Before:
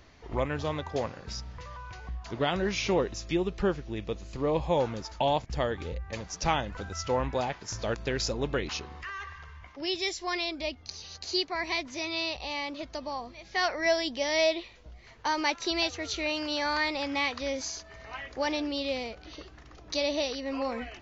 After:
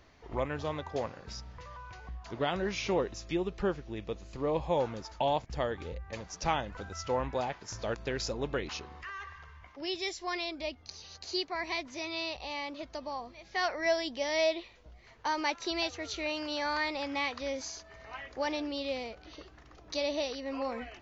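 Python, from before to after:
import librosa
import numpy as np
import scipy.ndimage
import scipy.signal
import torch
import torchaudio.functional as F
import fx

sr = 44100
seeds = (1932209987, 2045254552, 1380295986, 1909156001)

y = fx.peak_eq(x, sr, hz=780.0, db=3.0, octaves=2.8)
y = y * librosa.db_to_amplitude(-5.5)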